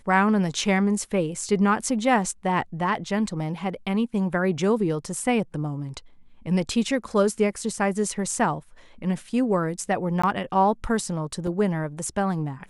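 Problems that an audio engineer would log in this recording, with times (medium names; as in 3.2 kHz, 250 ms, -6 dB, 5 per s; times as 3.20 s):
10.22–10.23 s: dropout 15 ms
11.47 s: dropout 2.4 ms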